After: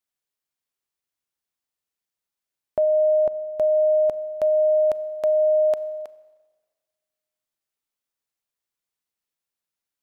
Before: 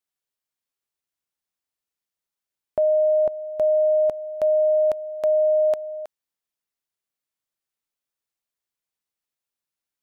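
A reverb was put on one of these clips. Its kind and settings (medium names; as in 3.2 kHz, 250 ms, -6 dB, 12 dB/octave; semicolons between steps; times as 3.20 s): Schroeder reverb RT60 1.5 s, combs from 30 ms, DRR 16.5 dB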